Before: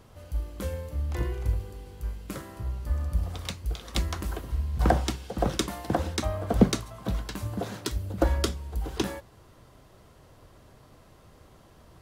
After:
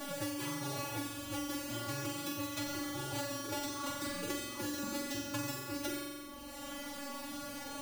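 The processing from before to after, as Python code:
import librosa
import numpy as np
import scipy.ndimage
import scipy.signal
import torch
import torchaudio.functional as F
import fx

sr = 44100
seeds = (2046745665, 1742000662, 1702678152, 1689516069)

y = fx.halfwave_hold(x, sr)
y = fx.low_shelf(y, sr, hz=71.0, db=-11.5)
y = fx.rider(y, sr, range_db=5, speed_s=0.5)
y = fx.bass_treble(y, sr, bass_db=-3, treble_db=4)
y = fx.stretch_vocoder(y, sr, factor=0.65)
y = fx.comb_fb(y, sr, f0_hz=150.0, decay_s=0.38, harmonics='all', damping=0.0, mix_pct=100)
y = fx.pitch_keep_formants(y, sr, semitones=11.0)
y = fx.doubler(y, sr, ms=17.0, db=-8.5)
y = fx.room_flutter(y, sr, wall_m=7.6, rt60_s=0.88)
y = fx.band_squash(y, sr, depth_pct=100)
y = F.gain(torch.from_numpy(y), 1.0).numpy()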